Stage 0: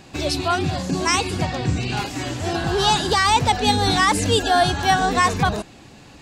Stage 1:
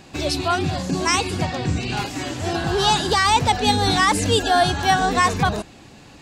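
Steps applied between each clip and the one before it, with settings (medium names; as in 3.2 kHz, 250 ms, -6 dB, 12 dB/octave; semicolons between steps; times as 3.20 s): hum notches 60/120 Hz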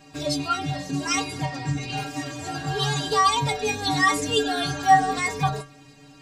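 inharmonic resonator 140 Hz, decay 0.37 s, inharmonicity 0.008; trim +7.5 dB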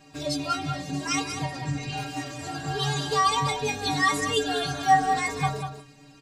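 delay 194 ms -8.5 dB; trim -3 dB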